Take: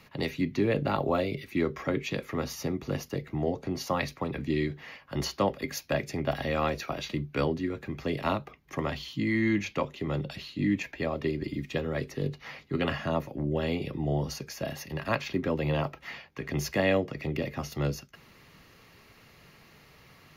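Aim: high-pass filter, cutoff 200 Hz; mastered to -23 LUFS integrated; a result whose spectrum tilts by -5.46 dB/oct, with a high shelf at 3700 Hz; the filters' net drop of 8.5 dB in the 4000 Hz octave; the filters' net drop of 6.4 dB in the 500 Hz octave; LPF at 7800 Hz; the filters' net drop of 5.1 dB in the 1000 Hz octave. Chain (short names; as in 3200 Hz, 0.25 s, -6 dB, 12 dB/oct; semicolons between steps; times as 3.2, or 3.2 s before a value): HPF 200 Hz; LPF 7800 Hz; bell 500 Hz -7 dB; bell 1000 Hz -3.5 dB; high shelf 3700 Hz -4.5 dB; bell 4000 Hz -8 dB; gain +13.5 dB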